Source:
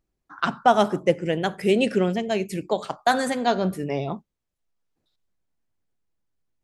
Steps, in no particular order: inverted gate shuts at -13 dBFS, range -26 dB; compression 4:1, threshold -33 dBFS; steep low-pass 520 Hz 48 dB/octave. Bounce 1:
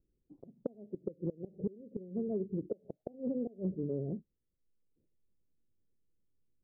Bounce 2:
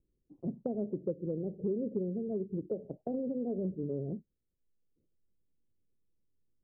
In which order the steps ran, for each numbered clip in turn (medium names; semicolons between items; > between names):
inverted gate > steep low-pass > compression; steep low-pass > compression > inverted gate